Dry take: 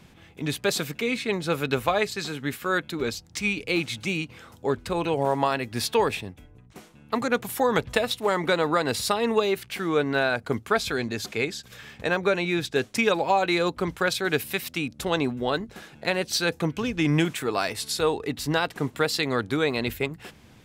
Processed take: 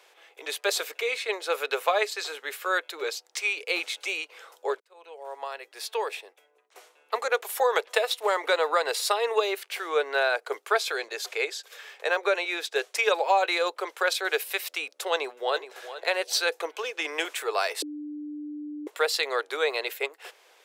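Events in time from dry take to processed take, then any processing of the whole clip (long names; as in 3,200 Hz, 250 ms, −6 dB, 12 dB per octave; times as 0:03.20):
0:04.80–0:07.26: fade in
0:15.12–0:15.77: delay throw 420 ms, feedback 25%, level −13 dB
0:17.82–0:18.87: beep over 297 Hz −9.5 dBFS
whole clip: Butterworth high-pass 420 Hz 48 dB per octave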